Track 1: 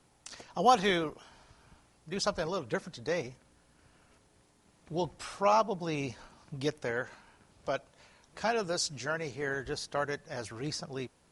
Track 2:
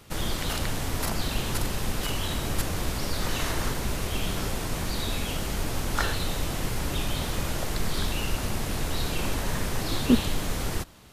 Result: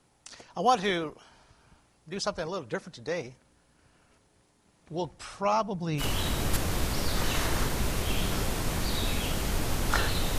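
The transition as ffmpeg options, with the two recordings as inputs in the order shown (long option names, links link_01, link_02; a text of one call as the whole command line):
ffmpeg -i cue0.wav -i cue1.wav -filter_complex "[0:a]asettb=1/sr,asplit=3[link_01][link_02][link_03];[link_01]atrim=end=5.064[link_04];[link_02]atrim=start=5.06:end=6.03,asetpts=PTS-STARTPTS,afade=type=in:duration=0.004:curve=qsin,afade=type=out:start_time=0.966:duration=0.004:curve=qsin,asubboost=boost=11:cutoff=220[link_05];[link_03]atrim=start=6.026[link_06];[link_04][link_05]acrossfade=duration=0.004:curve1=hsin:curve2=qsin[link_07];[link_07][link_06]acrossfade=duration=0.004:curve1=qsin:curve2=hsin,apad=whole_dur=10.38,atrim=end=10.38,atrim=end=6.03,asetpts=PTS-STARTPTS[link_08];[1:a]atrim=start=2.02:end=6.43,asetpts=PTS-STARTPTS[link_09];[link_08][link_09]acrossfade=duration=0.06:curve1=tri:curve2=tri" out.wav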